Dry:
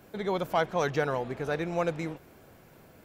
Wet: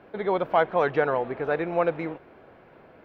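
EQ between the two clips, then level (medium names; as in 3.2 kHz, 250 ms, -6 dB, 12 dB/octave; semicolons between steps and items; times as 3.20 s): distance through air 410 m; tone controls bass -11 dB, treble -3 dB; +7.5 dB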